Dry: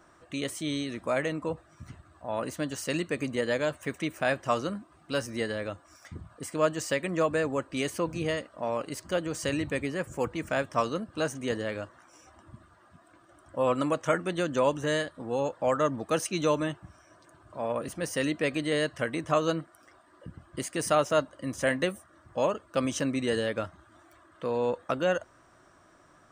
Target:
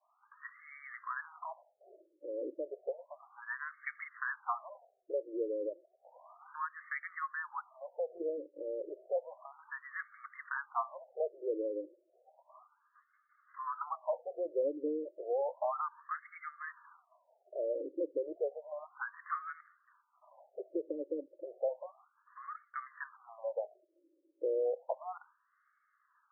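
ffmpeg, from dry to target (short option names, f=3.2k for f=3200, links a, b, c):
-filter_complex "[0:a]acrossover=split=140[a][b];[b]acompressor=threshold=-40dB:ratio=2.5[c];[a][c]amix=inputs=2:normalize=0,agate=range=-33dB:threshold=-47dB:ratio=3:detection=peak,afftfilt=real='re*between(b*sr/1024,400*pow(1600/400,0.5+0.5*sin(2*PI*0.32*pts/sr))/1.41,400*pow(1600/400,0.5+0.5*sin(2*PI*0.32*pts/sr))*1.41)':imag='im*between(b*sr/1024,400*pow(1600/400,0.5+0.5*sin(2*PI*0.32*pts/sr))/1.41,400*pow(1600/400,0.5+0.5*sin(2*PI*0.32*pts/sr))*1.41)':win_size=1024:overlap=0.75,volume=6.5dB"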